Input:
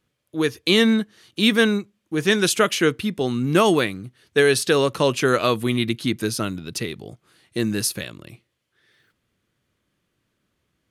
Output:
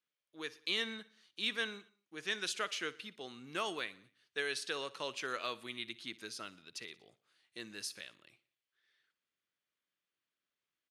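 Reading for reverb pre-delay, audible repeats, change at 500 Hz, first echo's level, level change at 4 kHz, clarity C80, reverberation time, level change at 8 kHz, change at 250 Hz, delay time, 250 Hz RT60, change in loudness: none, 3, -24.0 dB, -20.0 dB, -14.5 dB, none, none, -18.5 dB, -28.5 dB, 60 ms, none, -19.0 dB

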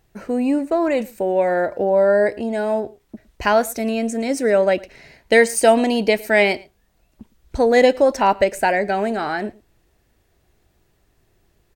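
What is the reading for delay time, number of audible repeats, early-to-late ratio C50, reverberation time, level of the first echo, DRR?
0.11 s, 1, none, none, -23.5 dB, none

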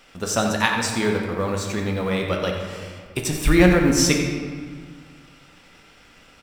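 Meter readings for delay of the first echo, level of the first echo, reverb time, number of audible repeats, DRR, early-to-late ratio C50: 89 ms, -10.5 dB, 1.9 s, 1, 1.0 dB, 3.0 dB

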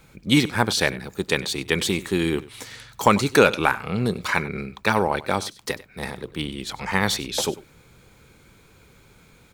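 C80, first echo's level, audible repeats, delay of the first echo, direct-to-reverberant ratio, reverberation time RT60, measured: none, -18.5 dB, 1, 96 ms, none, none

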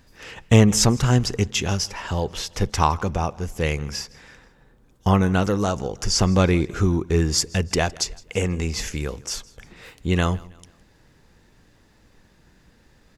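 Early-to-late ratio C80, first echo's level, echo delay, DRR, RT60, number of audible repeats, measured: none, -23.0 dB, 0.162 s, none, none, 2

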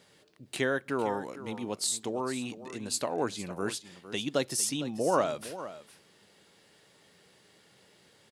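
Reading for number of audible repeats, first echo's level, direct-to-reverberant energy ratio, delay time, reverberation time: 1, -14.0 dB, none, 0.456 s, none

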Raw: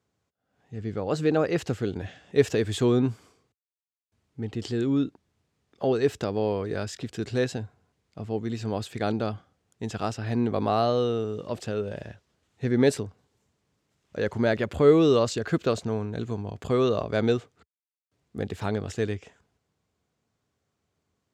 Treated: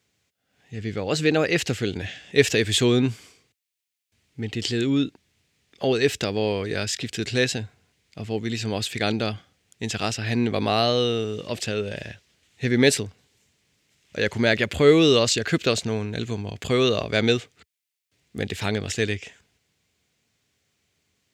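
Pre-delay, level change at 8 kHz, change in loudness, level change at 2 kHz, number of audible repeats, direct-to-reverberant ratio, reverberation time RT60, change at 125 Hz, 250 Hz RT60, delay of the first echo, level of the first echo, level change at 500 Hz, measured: none, +12.0 dB, +3.5 dB, +10.0 dB, none, none, none, +2.5 dB, none, none, none, +2.0 dB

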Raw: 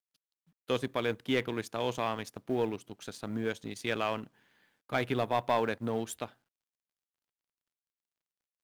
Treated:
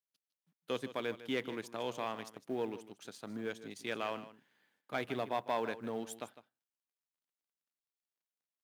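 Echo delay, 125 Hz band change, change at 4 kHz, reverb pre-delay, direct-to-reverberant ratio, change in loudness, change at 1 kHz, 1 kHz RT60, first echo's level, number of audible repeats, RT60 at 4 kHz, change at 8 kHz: 0.154 s, -11.5 dB, -6.0 dB, none, none, -6.0 dB, -6.0 dB, none, -14.5 dB, 1, none, -6.0 dB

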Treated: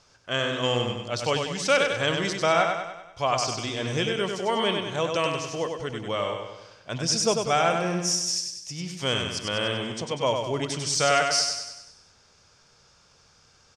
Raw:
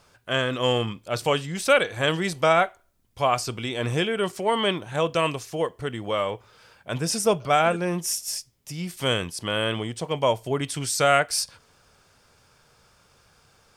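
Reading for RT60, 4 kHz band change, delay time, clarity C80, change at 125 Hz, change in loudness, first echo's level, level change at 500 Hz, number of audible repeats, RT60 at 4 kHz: none, +1.5 dB, 97 ms, none, -2.0 dB, -1.0 dB, -5.0 dB, -2.0 dB, 6, none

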